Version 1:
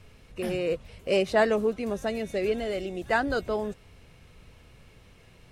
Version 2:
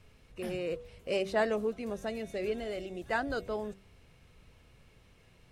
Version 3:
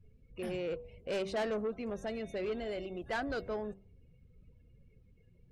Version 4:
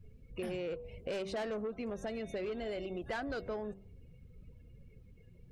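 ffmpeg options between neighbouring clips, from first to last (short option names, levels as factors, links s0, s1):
-af "bandreject=f=97.13:t=h:w=4,bandreject=f=194.26:t=h:w=4,bandreject=f=291.39:t=h:w=4,bandreject=f=388.52:t=h:w=4,bandreject=f=485.65:t=h:w=4,bandreject=f=582.78:t=h:w=4,bandreject=f=679.91:t=h:w=4,volume=0.473"
-af "afftdn=nr=24:nf=-57,asoftclip=type=tanh:threshold=0.0335"
-af "acompressor=threshold=0.00794:ratio=5,volume=1.88"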